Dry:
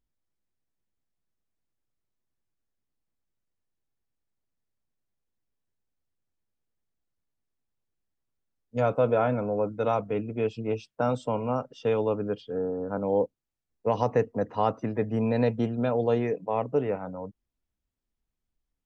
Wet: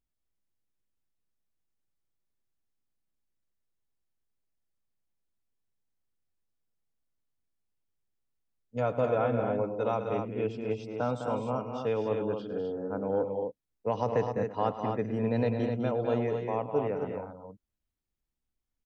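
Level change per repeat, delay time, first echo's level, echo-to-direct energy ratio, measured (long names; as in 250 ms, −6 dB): repeats not evenly spaced, 106 ms, −14.5 dB, −3.5 dB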